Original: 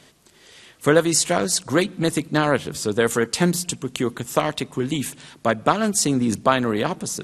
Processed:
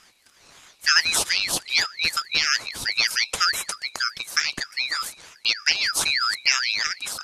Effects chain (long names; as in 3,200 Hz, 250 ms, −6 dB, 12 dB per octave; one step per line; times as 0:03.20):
band-splitting scrambler in four parts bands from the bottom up 3412
ring modulator whose carrier an LFO sweeps 1,300 Hz, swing 45%, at 3.2 Hz